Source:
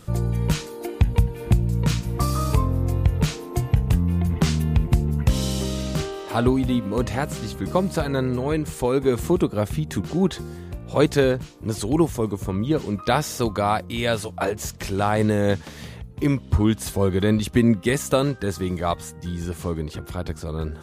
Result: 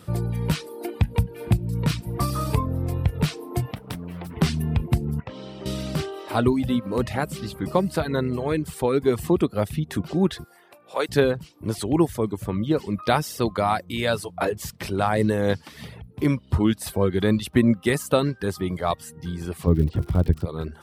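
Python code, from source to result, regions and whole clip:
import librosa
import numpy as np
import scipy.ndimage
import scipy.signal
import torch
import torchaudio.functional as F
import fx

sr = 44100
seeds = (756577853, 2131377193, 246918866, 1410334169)

y = fx.chain(x, sr, fx.highpass(hz=470.0, slope=6),
    fx.doppler_dist(depth_ms=0.99), at=(3.71, 4.37))
y = fx.chain(y, sr, fx.highpass(hz=590.0, slope=6),
    fx.spacing_loss(db_at_10k=36), at=(5.2, 5.66))
y = fx.chain(y, sr, fx.highpass(hz=670.0, slope=12),
    fx.peak_eq(hz=4000.0, db=-2.5, octaves=2.1), at=(10.44, 11.09))
y = fx.lowpass(y, sr, hz=10000.0, slope=12, at=(19.66, 20.44), fade=0.02)
y = fx.tilt_eq(y, sr, slope=-4.0, at=(19.66, 20.44), fade=0.02)
y = fx.dmg_crackle(y, sr, seeds[0], per_s=110.0, level_db=-28.0, at=(19.66, 20.44), fade=0.02)
y = scipy.signal.sosfilt(scipy.signal.butter(2, 77.0, 'highpass', fs=sr, output='sos'), y)
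y = fx.dereverb_blind(y, sr, rt60_s=0.53)
y = fx.peak_eq(y, sr, hz=6700.0, db=-9.0, octaves=0.3)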